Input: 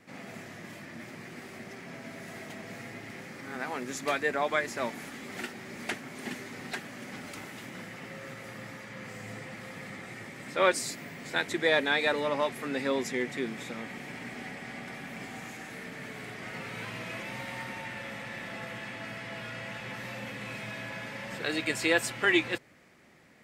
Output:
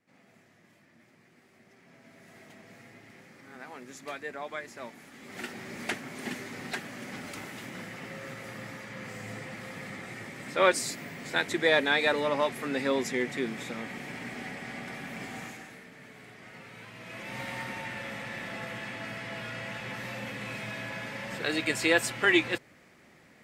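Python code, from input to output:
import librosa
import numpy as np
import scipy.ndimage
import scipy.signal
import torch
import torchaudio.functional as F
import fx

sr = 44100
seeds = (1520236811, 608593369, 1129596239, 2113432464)

y = fx.gain(x, sr, db=fx.line((1.47, -17.0), (2.44, -9.5), (5.07, -9.5), (5.54, 1.5), (15.43, 1.5), (15.86, -8.5), (16.94, -8.5), (17.41, 1.5)))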